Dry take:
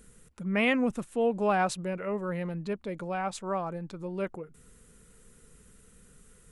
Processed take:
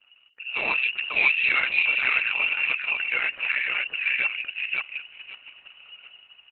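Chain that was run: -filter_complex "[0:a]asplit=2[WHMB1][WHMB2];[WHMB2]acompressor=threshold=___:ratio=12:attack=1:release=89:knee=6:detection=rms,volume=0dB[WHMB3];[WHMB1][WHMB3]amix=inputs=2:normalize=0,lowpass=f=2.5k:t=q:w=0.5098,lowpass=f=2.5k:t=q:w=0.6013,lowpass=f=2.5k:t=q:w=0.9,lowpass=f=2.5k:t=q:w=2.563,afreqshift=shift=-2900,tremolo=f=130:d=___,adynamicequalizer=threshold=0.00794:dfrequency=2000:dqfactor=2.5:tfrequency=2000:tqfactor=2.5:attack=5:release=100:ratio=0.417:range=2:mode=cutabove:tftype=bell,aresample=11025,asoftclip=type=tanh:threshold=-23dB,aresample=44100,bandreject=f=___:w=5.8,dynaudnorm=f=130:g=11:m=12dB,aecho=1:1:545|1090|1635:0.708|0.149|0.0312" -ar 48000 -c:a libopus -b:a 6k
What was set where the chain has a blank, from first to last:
-35dB, 0.919, 750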